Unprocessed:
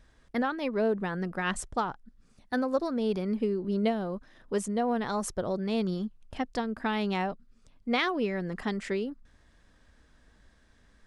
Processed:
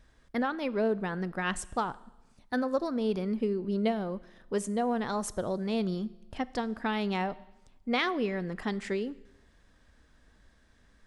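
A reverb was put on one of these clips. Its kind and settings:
four-comb reverb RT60 0.96 s, combs from 25 ms, DRR 18.5 dB
level −1 dB

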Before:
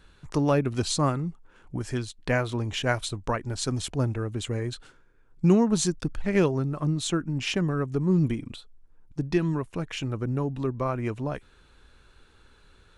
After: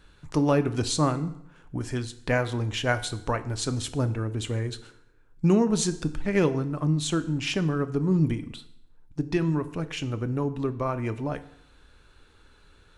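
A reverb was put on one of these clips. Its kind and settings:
feedback delay network reverb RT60 0.75 s, low-frequency decay 0.95×, high-frequency decay 0.85×, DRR 10.5 dB

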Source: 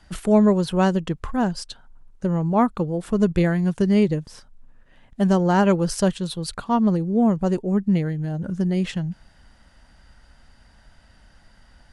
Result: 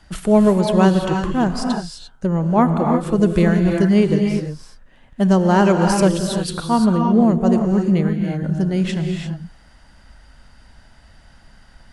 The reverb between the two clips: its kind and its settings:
reverb whose tail is shaped and stops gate 370 ms rising, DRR 3 dB
level +3 dB

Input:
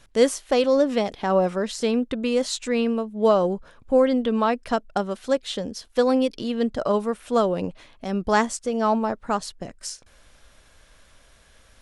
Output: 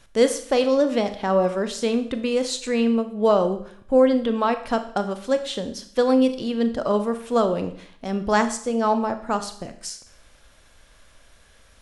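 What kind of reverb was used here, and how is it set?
four-comb reverb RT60 0.58 s, combs from 27 ms, DRR 9 dB

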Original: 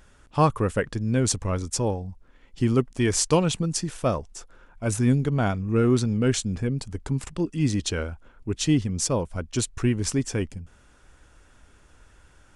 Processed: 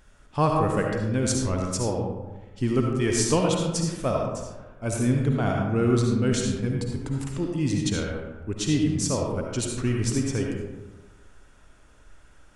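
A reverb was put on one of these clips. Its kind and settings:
comb and all-pass reverb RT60 1.2 s, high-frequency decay 0.45×, pre-delay 30 ms, DRR 0 dB
level −3 dB

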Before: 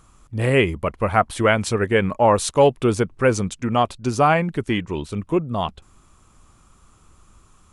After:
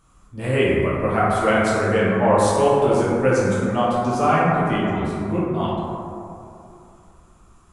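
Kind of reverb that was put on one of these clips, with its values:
dense smooth reverb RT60 2.7 s, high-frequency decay 0.3×, DRR −8 dB
level −8.5 dB

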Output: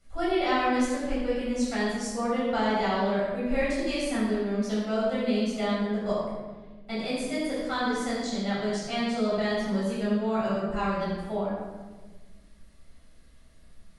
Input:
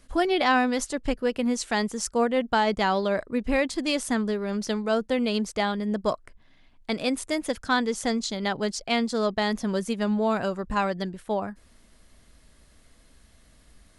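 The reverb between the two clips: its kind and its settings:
rectangular room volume 1,000 cubic metres, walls mixed, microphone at 7 metres
level −15.5 dB

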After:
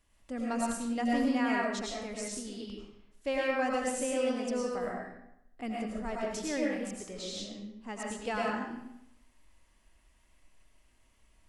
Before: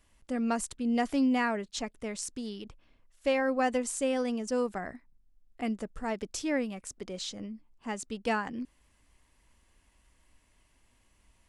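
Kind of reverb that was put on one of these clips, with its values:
comb and all-pass reverb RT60 0.8 s, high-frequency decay 0.85×, pre-delay 65 ms, DRR −3.5 dB
level −5.5 dB

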